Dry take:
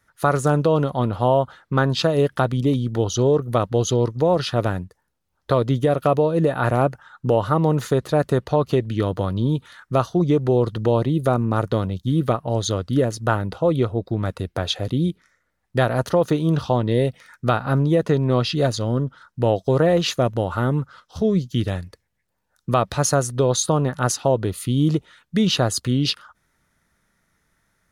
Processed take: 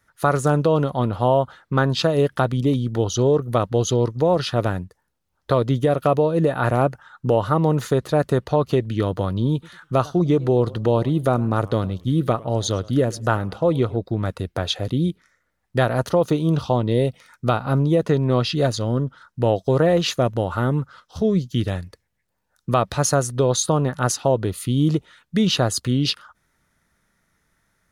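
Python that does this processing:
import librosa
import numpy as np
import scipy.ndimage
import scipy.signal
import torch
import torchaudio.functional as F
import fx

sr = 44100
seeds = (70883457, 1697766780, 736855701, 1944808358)

y = fx.echo_warbled(x, sr, ms=103, feedback_pct=30, rate_hz=2.8, cents=192, wet_db=-22.0, at=(9.52, 13.97))
y = fx.peak_eq(y, sr, hz=1700.0, db=-7.0, octaves=0.38, at=(16.09, 18.02))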